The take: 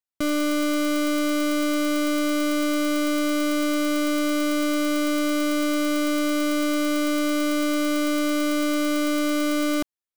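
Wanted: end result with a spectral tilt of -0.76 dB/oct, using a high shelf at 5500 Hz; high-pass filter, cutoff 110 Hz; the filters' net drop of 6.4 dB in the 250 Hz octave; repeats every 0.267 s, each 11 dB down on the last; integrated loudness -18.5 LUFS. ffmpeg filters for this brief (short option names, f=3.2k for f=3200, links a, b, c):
-af "highpass=110,equalizer=f=250:t=o:g=-8,highshelf=f=5.5k:g=7,aecho=1:1:267|534|801:0.282|0.0789|0.0221,volume=6.5dB"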